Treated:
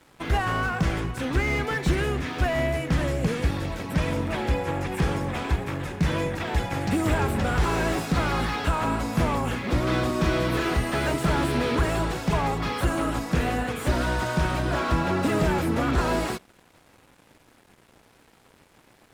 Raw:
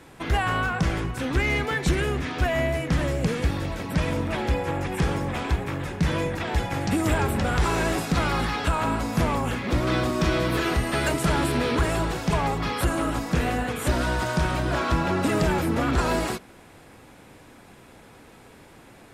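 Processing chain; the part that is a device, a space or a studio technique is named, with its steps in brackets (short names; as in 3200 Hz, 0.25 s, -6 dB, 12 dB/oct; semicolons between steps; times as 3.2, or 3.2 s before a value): early transistor amplifier (crossover distortion -49.5 dBFS; slew limiter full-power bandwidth 99 Hz)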